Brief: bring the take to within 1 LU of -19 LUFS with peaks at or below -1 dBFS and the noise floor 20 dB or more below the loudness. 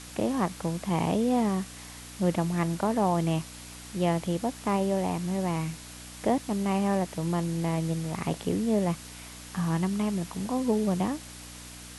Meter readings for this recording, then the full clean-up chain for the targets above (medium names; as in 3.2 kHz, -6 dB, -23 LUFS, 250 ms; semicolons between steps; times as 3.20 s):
hum 60 Hz; highest harmonic 300 Hz; hum level -47 dBFS; noise floor -44 dBFS; noise floor target -49 dBFS; loudness -28.5 LUFS; peak level -13.0 dBFS; loudness target -19.0 LUFS
-> de-hum 60 Hz, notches 5; noise print and reduce 6 dB; trim +9.5 dB